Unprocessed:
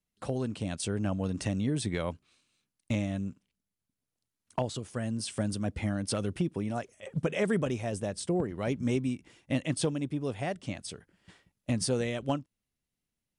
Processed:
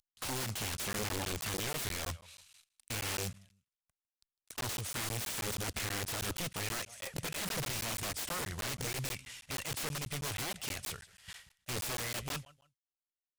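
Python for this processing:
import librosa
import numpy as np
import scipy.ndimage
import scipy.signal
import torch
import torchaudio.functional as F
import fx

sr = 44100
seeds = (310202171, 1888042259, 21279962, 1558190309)

p1 = fx.cvsd(x, sr, bps=64000)
p2 = fx.tone_stack(p1, sr, knobs='10-0-10')
p3 = fx.over_compress(p2, sr, threshold_db=-47.0, ratio=-0.5)
p4 = p2 + (p3 * librosa.db_to_amplitude(1.5))
p5 = fx.echo_feedback(p4, sr, ms=153, feedback_pct=29, wet_db=-24)
p6 = (np.mod(10.0 ** (36.0 / 20.0) * p5 + 1.0, 2.0) - 1.0) / 10.0 ** (36.0 / 20.0)
p7 = fx.buffer_crackle(p6, sr, first_s=0.77, period_s=0.16, block=512, kind='zero')
p8 = fx.doppler_dist(p7, sr, depth_ms=0.18)
y = p8 * librosa.db_to_amplitude(5.0)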